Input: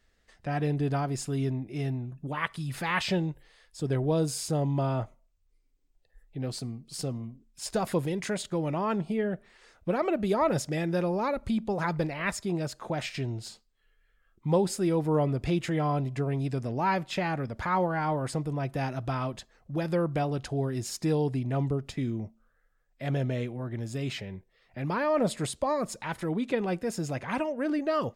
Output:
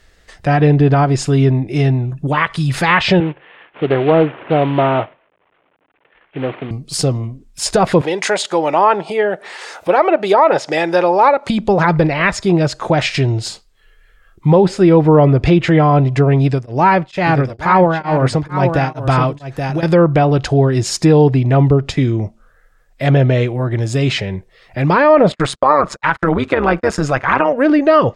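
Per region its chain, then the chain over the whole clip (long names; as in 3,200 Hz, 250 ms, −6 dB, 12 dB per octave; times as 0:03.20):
0:03.20–0:06.71: variable-slope delta modulation 16 kbit/s + high-pass filter 230 Hz + highs frequency-modulated by the lows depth 0.16 ms
0:08.01–0:11.50: high-pass filter 430 Hz + parametric band 840 Hz +6 dB 0.36 octaves + upward compression, threshold −39 dBFS
0:16.44–0:19.83: single-tap delay 827 ms −7.5 dB + tremolo along a rectified sine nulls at 2.2 Hz
0:25.32–0:27.53: noise gate −41 dBFS, range −39 dB + parametric band 1,300 Hz +12 dB 1.1 octaves + amplitude modulation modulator 140 Hz, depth 55%
whole clip: parametric band 230 Hz −9 dB 0.27 octaves; treble cut that deepens with the level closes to 2,900 Hz, closed at −24.5 dBFS; boost into a limiter +19 dB; level −1 dB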